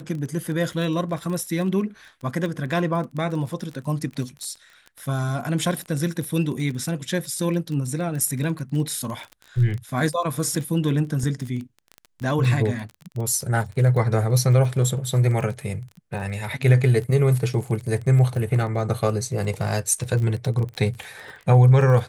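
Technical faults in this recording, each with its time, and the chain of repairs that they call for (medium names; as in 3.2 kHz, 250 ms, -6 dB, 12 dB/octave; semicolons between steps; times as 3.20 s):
crackle 22 per s -29 dBFS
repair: de-click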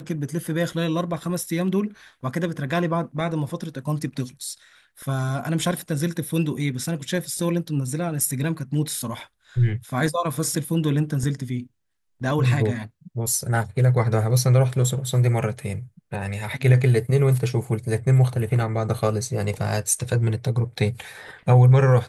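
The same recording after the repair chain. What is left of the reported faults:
nothing left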